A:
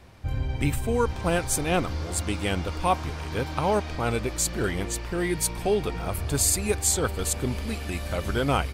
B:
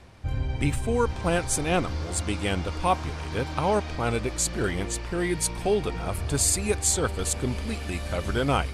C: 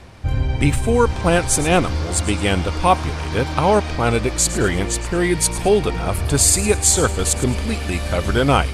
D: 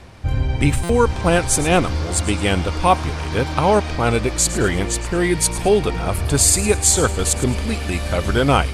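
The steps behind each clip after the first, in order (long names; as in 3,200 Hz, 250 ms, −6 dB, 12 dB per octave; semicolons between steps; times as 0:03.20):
low-pass filter 11,000 Hz 24 dB per octave; reversed playback; upward compression, threshold −37 dBFS; reversed playback
delay with a high-pass on its return 109 ms, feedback 36%, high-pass 4,100 Hz, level −13 dB; level +8.5 dB
buffer that repeats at 0:00.83, samples 256, times 10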